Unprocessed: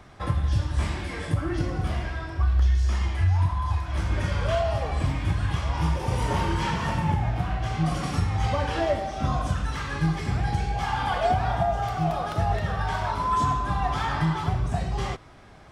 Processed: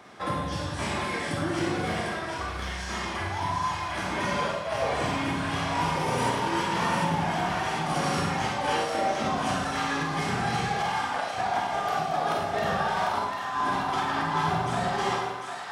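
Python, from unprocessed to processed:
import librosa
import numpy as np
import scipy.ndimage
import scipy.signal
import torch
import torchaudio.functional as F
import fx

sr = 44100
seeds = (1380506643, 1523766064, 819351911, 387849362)

p1 = scipy.signal.sosfilt(scipy.signal.butter(2, 240.0, 'highpass', fs=sr, output='sos'), x)
p2 = fx.over_compress(p1, sr, threshold_db=-30.0, ratio=-0.5)
p3 = p2 + fx.echo_split(p2, sr, split_hz=790.0, low_ms=83, high_ms=748, feedback_pct=52, wet_db=-4.5, dry=0)
y = fx.rev_schroeder(p3, sr, rt60_s=0.61, comb_ms=32, drr_db=1.0)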